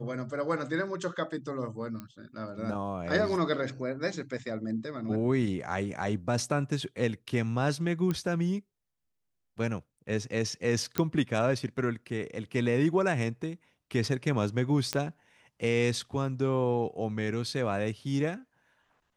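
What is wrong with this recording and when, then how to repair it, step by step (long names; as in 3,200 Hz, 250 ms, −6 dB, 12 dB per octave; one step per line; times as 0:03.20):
0:02.00: click −25 dBFS
0:08.11: click −18 dBFS
0:10.98: click −12 dBFS
0:14.93: click −13 dBFS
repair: click removal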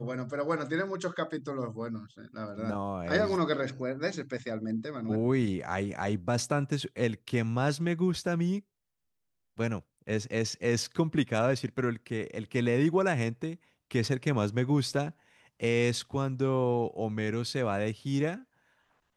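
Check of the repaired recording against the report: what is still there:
0:14.93: click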